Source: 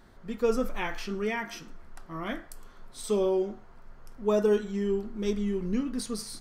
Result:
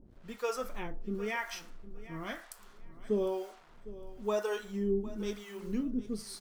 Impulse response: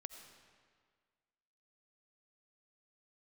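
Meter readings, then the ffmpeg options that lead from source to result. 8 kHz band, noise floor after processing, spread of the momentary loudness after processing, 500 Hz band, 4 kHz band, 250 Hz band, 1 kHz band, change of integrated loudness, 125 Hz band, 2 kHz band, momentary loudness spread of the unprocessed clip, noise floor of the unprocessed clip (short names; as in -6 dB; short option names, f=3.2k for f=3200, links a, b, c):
-6.0 dB, -56 dBFS, 18 LU, -7.0 dB, -5.0 dB, -6.0 dB, -4.0 dB, -6.5 dB, -6.0 dB, -3.5 dB, 15 LU, -51 dBFS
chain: -filter_complex "[0:a]acrusher=bits=8:mix=0:aa=0.5,acrossover=split=540[a][b];[a]aeval=exprs='val(0)*(1-1/2+1/2*cos(2*PI*1*n/s))':c=same[c];[b]aeval=exprs='val(0)*(1-1/2-1/2*cos(2*PI*1*n/s))':c=same[d];[c][d]amix=inputs=2:normalize=0,aecho=1:1:756|1512:0.141|0.024"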